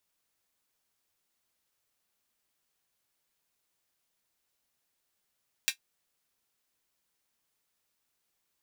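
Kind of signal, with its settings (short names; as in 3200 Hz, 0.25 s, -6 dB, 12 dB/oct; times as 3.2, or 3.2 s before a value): closed hi-hat, high-pass 2300 Hz, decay 0.10 s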